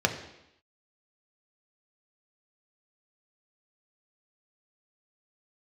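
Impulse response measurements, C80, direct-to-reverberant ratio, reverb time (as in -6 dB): 12.0 dB, 3.5 dB, 0.85 s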